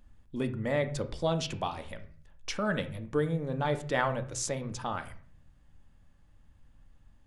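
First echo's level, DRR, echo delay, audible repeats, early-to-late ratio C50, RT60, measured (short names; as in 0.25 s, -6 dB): none, 8.0 dB, none, none, 13.5 dB, 0.45 s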